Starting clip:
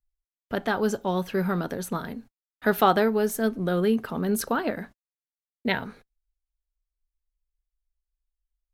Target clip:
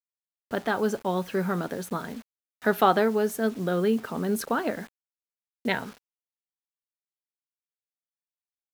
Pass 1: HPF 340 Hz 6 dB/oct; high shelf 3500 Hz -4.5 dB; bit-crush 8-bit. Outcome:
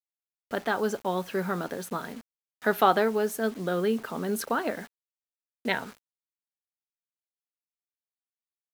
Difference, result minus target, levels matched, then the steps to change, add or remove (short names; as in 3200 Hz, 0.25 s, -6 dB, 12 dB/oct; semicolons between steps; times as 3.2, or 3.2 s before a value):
125 Hz band -2.5 dB
change: HPF 150 Hz 6 dB/oct